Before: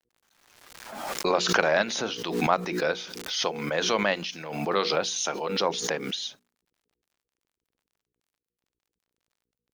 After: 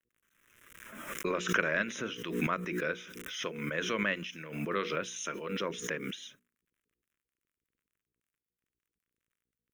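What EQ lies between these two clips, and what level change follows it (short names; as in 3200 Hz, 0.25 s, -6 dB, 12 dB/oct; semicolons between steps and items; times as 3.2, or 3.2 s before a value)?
fixed phaser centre 1900 Hz, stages 4; -3.0 dB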